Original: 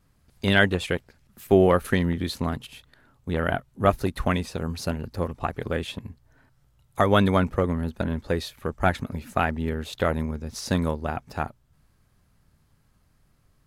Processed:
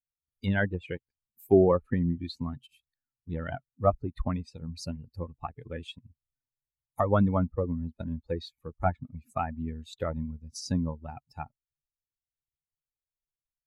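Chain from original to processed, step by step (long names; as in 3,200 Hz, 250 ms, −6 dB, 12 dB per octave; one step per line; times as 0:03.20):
spectral dynamics exaggerated over time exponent 2
treble cut that deepens with the level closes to 1,100 Hz, closed at −24.5 dBFS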